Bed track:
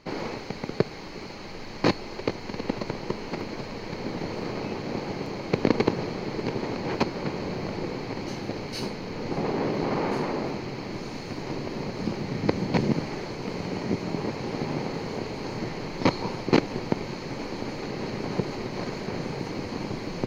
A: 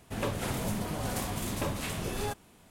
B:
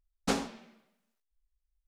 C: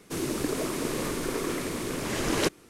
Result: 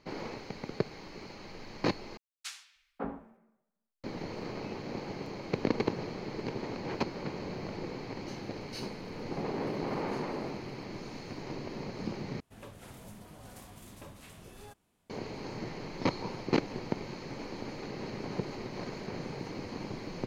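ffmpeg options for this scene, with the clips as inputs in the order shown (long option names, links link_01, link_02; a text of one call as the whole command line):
ffmpeg -i bed.wav -i cue0.wav -i cue1.wav -filter_complex "[1:a]asplit=2[link_01][link_02];[0:a]volume=-7.5dB[link_03];[2:a]acrossover=split=230|1600[link_04][link_05][link_06];[link_05]adelay=550[link_07];[link_04]adelay=590[link_08];[link_08][link_07][link_06]amix=inputs=3:normalize=0[link_09];[link_01]acompressor=threshold=-47dB:ratio=6:attack=3.2:release=140:knee=1:detection=peak[link_10];[link_03]asplit=3[link_11][link_12][link_13];[link_11]atrim=end=2.174[link_14];[link_09]atrim=end=1.87,asetpts=PTS-STARTPTS,volume=-5.5dB[link_15];[link_12]atrim=start=4.036:end=12.404[link_16];[link_02]atrim=end=2.7,asetpts=PTS-STARTPTS,volume=-16.5dB[link_17];[link_13]atrim=start=15.096[link_18];[link_10]atrim=end=2.7,asetpts=PTS-STARTPTS,volume=-17.5dB,afade=type=in:duration=0.004:curve=hsin,afade=type=out:start_time=2.696:duration=0.004:curve=hsin,adelay=8510[link_19];[link_14][link_15]acrossfade=duration=0.004:curve1=hsin:curve2=hsin[link_20];[link_20][link_16]acrossfade=duration=0.004:curve1=hsin:curve2=hsin[link_21];[link_21][link_17]acrossfade=duration=0.004:curve1=hsin:curve2=hsin[link_22];[link_22][link_18]acrossfade=duration=0.004:curve1=hsin:curve2=hsin[link_23];[link_23][link_19]amix=inputs=2:normalize=0" out.wav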